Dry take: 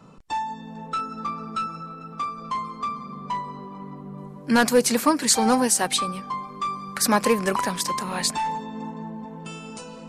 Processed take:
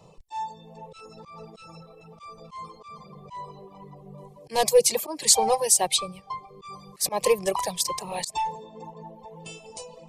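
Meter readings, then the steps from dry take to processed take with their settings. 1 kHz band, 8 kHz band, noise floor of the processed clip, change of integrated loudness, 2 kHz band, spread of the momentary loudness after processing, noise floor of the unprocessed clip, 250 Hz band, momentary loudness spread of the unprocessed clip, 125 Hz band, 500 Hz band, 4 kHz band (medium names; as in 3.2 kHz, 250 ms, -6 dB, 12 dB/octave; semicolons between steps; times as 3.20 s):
-4.5 dB, +1.0 dB, -52 dBFS, +1.0 dB, -10.0 dB, 23 LU, -41 dBFS, -16.0 dB, 18 LU, -8.0 dB, +0.5 dB, -0.5 dB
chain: slow attack 132 ms; static phaser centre 600 Hz, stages 4; reverb removal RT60 1.1 s; trim +2.5 dB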